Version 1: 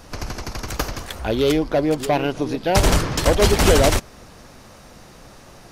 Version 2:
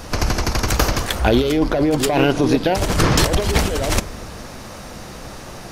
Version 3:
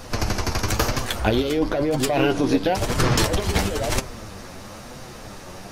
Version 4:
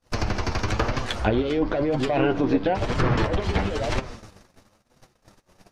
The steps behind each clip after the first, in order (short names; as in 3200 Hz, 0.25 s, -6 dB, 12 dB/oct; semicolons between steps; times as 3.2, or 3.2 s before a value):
negative-ratio compressor -22 dBFS, ratio -1; reverb RT60 1.0 s, pre-delay 7 ms, DRR 15.5 dB; gain +5.5 dB
flange 1 Hz, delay 7.5 ms, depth 3.7 ms, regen +39%
gate -34 dBFS, range -40 dB; treble ducked by the level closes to 2200 Hz, closed at -16 dBFS; gain -1.5 dB